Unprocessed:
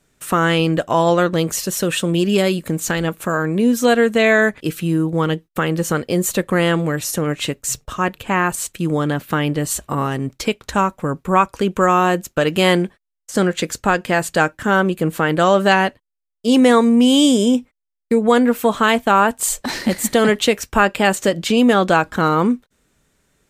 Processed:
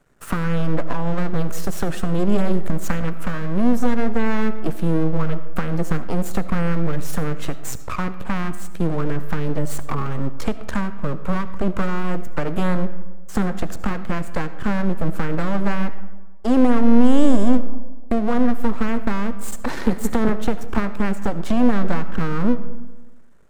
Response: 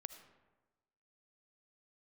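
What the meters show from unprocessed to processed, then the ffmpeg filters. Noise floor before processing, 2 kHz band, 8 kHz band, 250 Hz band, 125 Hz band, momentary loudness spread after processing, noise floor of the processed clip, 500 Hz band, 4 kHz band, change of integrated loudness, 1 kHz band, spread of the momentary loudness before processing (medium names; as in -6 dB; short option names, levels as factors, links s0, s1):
-78 dBFS, -11.5 dB, -14.0 dB, -3.0 dB, -2.0 dB, 9 LU, -27 dBFS, -9.0 dB, -16.0 dB, -6.0 dB, -10.0 dB, 8 LU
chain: -filter_complex "[0:a]highshelf=f=1900:t=q:w=1.5:g=-10.5,acrossover=split=270[s0][s1];[s1]acompressor=threshold=0.0398:ratio=5[s2];[s0][s2]amix=inputs=2:normalize=0,aeval=exprs='max(val(0),0)':c=same,asplit=2[s3][s4];[1:a]atrim=start_sample=2205[s5];[s4][s5]afir=irnorm=-1:irlink=0,volume=3.76[s6];[s3][s6]amix=inputs=2:normalize=0,volume=0.668"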